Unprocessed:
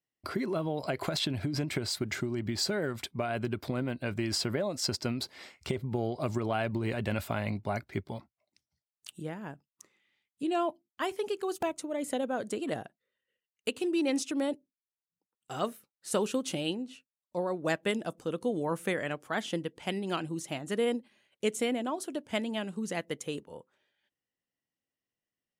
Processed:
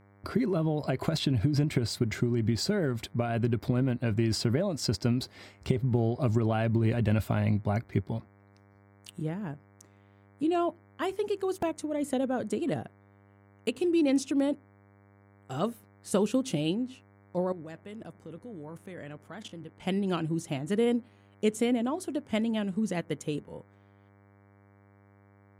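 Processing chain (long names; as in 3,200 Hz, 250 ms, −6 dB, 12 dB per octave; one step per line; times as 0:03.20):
low-shelf EQ 330 Hz +12 dB
0:17.52–0:19.80: output level in coarse steps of 20 dB
hum with harmonics 100 Hz, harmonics 23, −57 dBFS −5 dB per octave
level −2 dB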